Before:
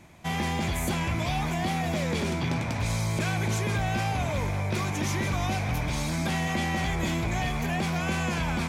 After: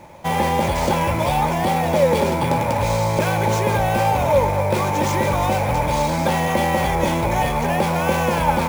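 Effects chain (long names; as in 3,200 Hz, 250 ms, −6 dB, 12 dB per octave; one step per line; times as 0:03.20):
sample-rate reduction 13,000 Hz, jitter 0%
hollow resonant body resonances 550/860 Hz, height 17 dB, ringing for 35 ms
level +5 dB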